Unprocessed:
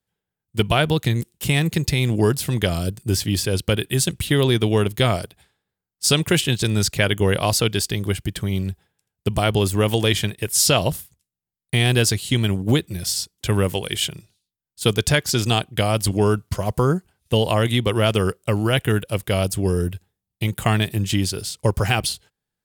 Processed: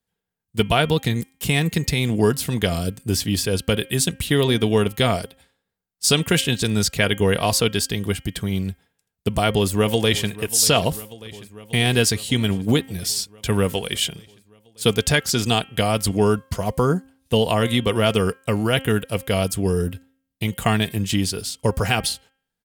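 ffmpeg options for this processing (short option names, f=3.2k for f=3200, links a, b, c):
-filter_complex "[0:a]asplit=2[a][b];[b]afade=t=in:st=9.48:d=0.01,afade=t=out:st=10.29:d=0.01,aecho=0:1:590|1180|1770|2360|2950|3540|4130|4720|5310|5900:0.141254|0.10594|0.0794552|0.0595914|0.0446936|0.0335202|0.0251401|0.0188551|0.0141413|0.010606[c];[a][c]amix=inputs=2:normalize=0,aecho=1:1:4.3:0.31,bandreject=f=266.8:t=h:w=4,bandreject=f=533.6:t=h:w=4,bandreject=f=800.4:t=h:w=4,bandreject=f=1.0672k:t=h:w=4,bandreject=f=1.334k:t=h:w=4,bandreject=f=1.6008k:t=h:w=4,bandreject=f=1.8676k:t=h:w=4,bandreject=f=2.1344k:t=h:w=4,bandreject=f=2.4012k:t=h:w=4,bandreject=f=2.668k:t=h:w=4,bandreject=f=2.9348k:t=h:w=4,bandreject=f=3.2016k:t=h:w=4"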